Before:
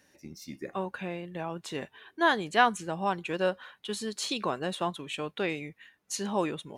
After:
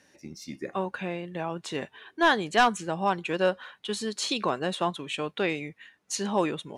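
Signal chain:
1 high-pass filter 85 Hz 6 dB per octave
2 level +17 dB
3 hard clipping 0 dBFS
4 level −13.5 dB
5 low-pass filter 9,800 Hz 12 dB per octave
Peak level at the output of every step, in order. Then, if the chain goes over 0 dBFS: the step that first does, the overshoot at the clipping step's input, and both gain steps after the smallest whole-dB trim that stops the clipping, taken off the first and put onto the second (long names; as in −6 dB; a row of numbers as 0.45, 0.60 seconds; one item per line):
−9.0, +8.0, 0.0, −13.5, −13.0 dBFS
step 2, 8.0 dB
step 2 +9 dB, step 4 −5.5 dB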